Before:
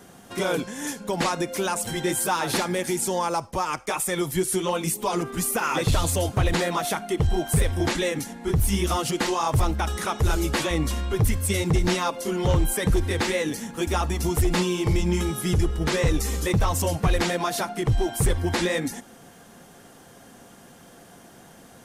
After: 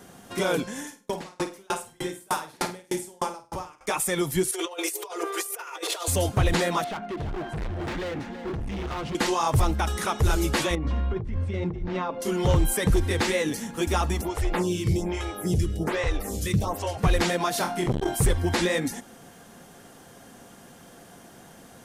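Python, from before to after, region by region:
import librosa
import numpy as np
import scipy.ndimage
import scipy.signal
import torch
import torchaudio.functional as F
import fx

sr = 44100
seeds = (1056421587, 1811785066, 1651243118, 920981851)

y = fx.chain(x, sr, fx.room_flutter(wall_m=8.6, rt60_s=0.73),
    fx.tremolo_decay(direction='decaying', hz=3.3, depth_db=37), at=(0.79, 3.81))
y = fx.chain(y, sr, fx.cheby1_highpass(hz=330.0, order=8),
    fx.comb(ms=4.2, depth=0.45),
    fx.over_compress(threshold_db=-31.0, ratio=-0.5), at=(4.51, 6.08))
y = fx.chain(y, sr, fx.lowpass(hz=2200.0, slope=12),
    fx.clip_hard(threshold_db=-29.5),
    fx.echo_single(ms=330, db=-10.5), at=(6.84, 9.15))
y = fx.chain(y, sr, fx.over_compress(threshold_db=-26.0, ratio=-1.0),
    fx.spacing_loss(db_at_10k=40),
    fx.hum_notches(base_hz=50, count=8), at=(10.75, 12.22))
y = fx.dmg_buzz(y, sr, base_hz=100.0, harmonics=8, level_db=-35.0, tilt_db=-4, odd_only=False, at=(14.2, 16.97), fade=0.02)
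y = fx.stagger_phaser(y, sr, hz=1.2, at=(14.2, 16.97), fade=0.02)
y = fx.chain(y, sr, fx.room_flutter(wall_m=3.9, rt60_s=0.27),
    fx.transformer_sat(knee_hz=400.0), at=(17.58, 18.15))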